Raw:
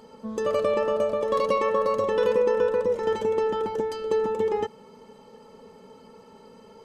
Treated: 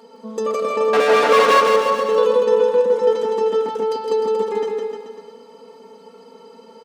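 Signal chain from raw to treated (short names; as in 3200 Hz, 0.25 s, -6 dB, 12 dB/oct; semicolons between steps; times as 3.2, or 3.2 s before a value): 0.93–1.6 overdrive pedal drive 36 dB, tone 2300 Hz, clips at -10.5 dBFS; HPF 280 Hz 12 dB/oct; comb 4.3 ms, depth 73%; bouncing-ball echo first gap 0.16 s, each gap 0.9×, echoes 5; gain +1.5 dB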